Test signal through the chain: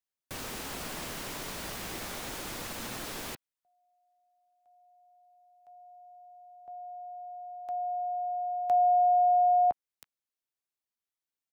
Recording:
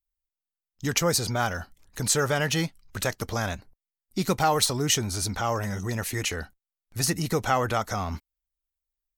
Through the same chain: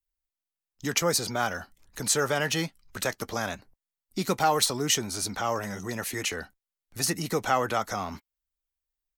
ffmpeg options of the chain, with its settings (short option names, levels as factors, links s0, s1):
-filter_complex "[0:a]acrossover=split=160|790|3300[s0][s1][s2][s3];[s0]acompressor=threshold=0.00447:ratio=6[s4];[s2]asplit=2[s5][s6];[s6]adelay=14,volume=0.299[s7];[s5][s7]amix=inputs=2:normalize=0[s8];[s4][s1][s8][s3]amix=inputs=4:normalize=0,volume=0.891"